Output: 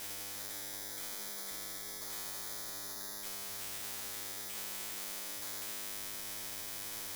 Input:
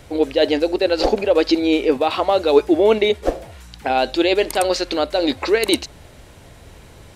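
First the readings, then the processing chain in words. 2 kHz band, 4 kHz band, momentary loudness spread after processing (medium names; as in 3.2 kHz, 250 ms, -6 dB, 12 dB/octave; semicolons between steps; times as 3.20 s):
-20.5 dB, -18.5 dB, 1 LU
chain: knee-point frequency compression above 1.5 kHz 4:1; spectral noise reduction 13 dB; peaking EQ 360 Hz +12.5 dB 1.4 oct; slow attack 688 ms; compression, threshold -30 dBFS, peak gain reduction 20.5 dB; peak limiter -33 dBFS, peak gain reduction 14 dB; feedback comb 100 Hz, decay 2 s, mix 100%; careless resampling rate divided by 8×, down none, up zero stuff; spectrum-flattening compressor 10:1; trim +8.5 dB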